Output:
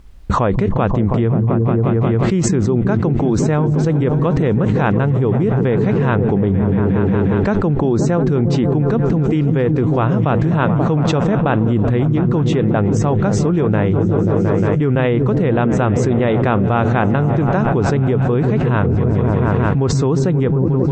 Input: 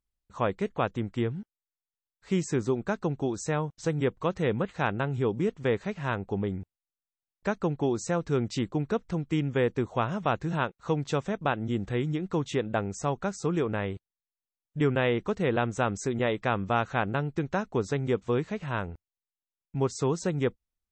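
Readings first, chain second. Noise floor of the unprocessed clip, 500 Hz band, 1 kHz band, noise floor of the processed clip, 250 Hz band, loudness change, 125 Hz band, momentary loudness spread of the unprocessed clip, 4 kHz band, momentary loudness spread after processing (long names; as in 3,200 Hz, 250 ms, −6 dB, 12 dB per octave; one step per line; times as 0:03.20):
below −85 dBFS, +12.0 dB, +10.5 dB, −17 dBFS, +15.5 dB, +13.5 dB, +18.0 dB, 4 LU, +6.5 dB, 1 LU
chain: low-pass filter 2,000 Hz 6 dB per octave
low-shelf EQ 300 Hz +6 dB
automatic gain control gain up to 5 dB
on a send: echo whose low-pass opens from repeat to repeat 178 ms, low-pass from 200 Hz, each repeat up 1 octave, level −6 dB
on the sum: envelope flattener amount 100%
level −1 dB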